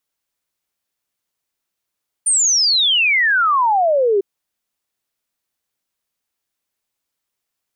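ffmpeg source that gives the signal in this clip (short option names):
-f lavfi -i "aevalsrc='0.251*clip(min(t,1.95-t)/0.01,0,1)*sin(2*PI*9200*1.95/log(380/9200)*(exp(log(380/9200)*t/1.95)-1))':d=1.95:s=44100"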